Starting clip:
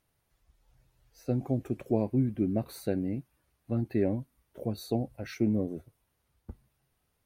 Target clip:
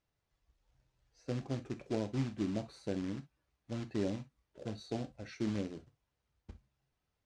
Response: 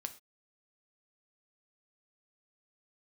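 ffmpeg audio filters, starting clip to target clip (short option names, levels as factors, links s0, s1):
-filter_complex "[0:a]acrusher=bits=3:mode=log:mix=0:aa=0.000001,lowpass=f=7100:w=0.5412,lowpass=f=7100:w=1.3066[s0];[1:a]atrim=start_sample=2205,atrim=end_sample=3087[s1];[s0][s1]afir=irnorm=-1:irlink=0,volume=0.531"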